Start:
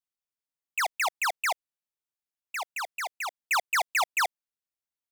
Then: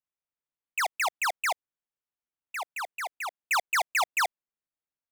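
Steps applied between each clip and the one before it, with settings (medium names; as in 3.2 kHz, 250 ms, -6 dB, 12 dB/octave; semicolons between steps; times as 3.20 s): local Wiener filter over 9 samples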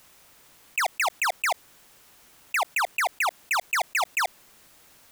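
level flattener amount 100%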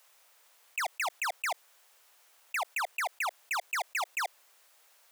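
high-pass 500 Hz 24 dB/octave; trim -7.5 dB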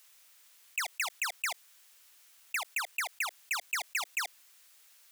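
peaking EQ 680 Hz -13 dB 2.1 oct; trim +3.5 dB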